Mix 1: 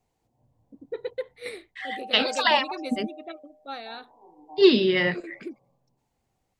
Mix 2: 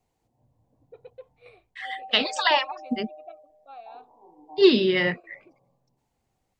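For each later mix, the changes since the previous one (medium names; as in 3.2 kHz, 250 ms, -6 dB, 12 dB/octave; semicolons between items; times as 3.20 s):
first voice: add vowel filter a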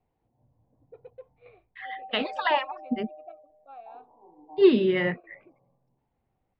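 master: add distance through air 460 m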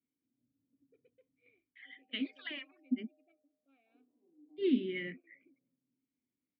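master: add vowel filter i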